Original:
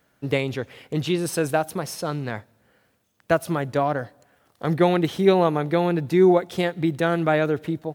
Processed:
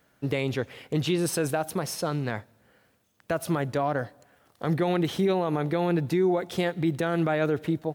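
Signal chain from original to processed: limiter -16 dBFS, peak gain reduction 11.5 dB

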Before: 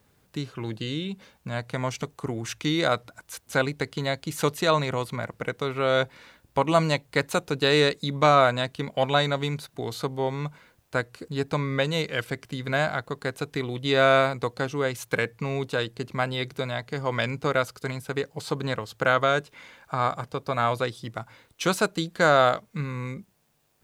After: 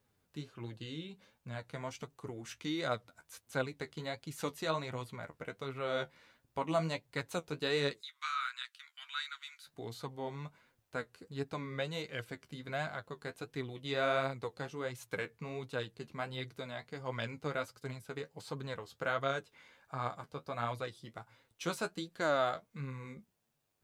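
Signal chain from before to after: flange 1.4 Hz, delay 7 ms, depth 6.8 ms, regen +37%; 8.01–9.67 elliptic high-pass 1300 Hz, stop band 60 dB; gain -9 dB

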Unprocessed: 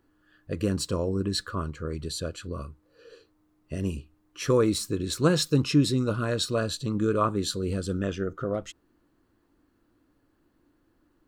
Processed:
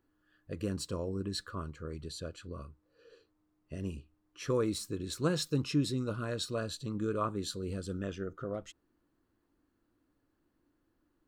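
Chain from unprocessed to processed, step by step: 2.02–4.55 high shelf 9500 Hz -7.5 dB; gain -8.5 dB

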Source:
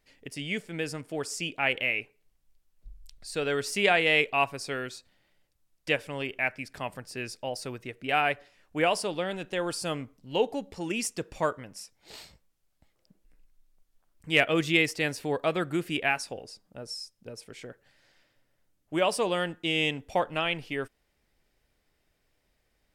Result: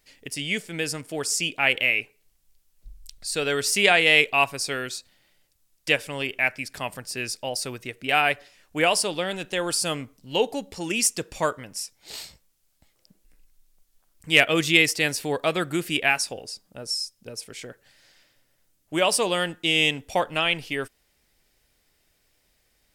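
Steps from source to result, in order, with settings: high shelf 3100 Hz +10.5 dB; gain +2.5 dB

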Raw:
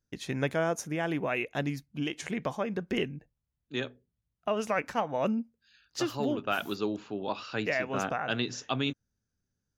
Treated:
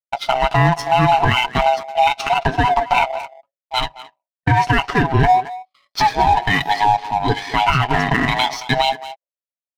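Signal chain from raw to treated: band-swap scrambler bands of 500 Hz; polynomial smoothing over 15 samples; gate with hold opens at -52 dBFS; comb 7.2 ms, depth 58%; in parallel at -10 dB: hard clip -29 dBFS, distortion -8 dB; on the sum: speakerphone echo 0.22 s, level -12 dB; power-law curve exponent 1.4; maximiser +23 dB; gain -3.5 dB

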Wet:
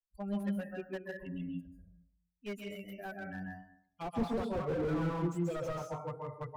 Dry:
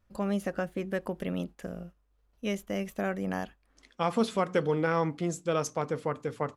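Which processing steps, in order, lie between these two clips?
per-bin expansion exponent 3; plate-style reverb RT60 0.68 s, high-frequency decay 0.5×, pre-delay 0.12 s, DRR 1 dB; slew limiter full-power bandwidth 12 Hz

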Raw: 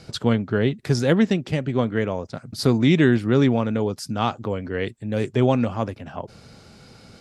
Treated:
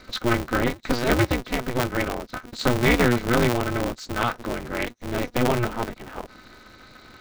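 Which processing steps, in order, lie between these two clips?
nonlinear frequency compression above 3600 Hz 1.5:1; small resonant body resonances 1400/2100/3900 Hz, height 16 dB; polarity switched at an audio rate 120 Hz; gain -3 dB

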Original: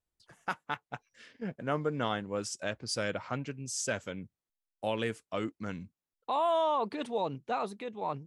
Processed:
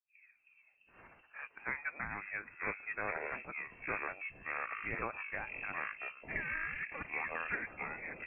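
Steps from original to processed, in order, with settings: tape start at the beginning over 1.88 s; spectral gate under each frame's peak -10 dB weak; HPF 480 Hz 24 dB/oct; echoes that change speed 0.253 s, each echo -6 st, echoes 3; inverted band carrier 2900 Hz; gain +2.5 dB

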